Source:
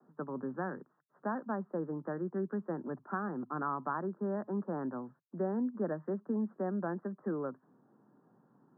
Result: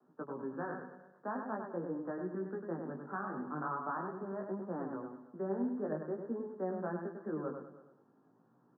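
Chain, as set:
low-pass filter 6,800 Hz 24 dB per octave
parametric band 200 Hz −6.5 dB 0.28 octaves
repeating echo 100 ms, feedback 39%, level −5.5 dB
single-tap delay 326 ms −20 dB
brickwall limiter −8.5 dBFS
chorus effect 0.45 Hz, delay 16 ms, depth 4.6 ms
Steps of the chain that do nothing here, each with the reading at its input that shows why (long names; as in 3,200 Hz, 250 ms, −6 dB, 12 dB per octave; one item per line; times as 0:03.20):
low-pass filter 6,800 Hz: nothing at its input above 1,700 Hz
brickwall limiter −8.5 dBFS: peak of its input −21.5 dBFS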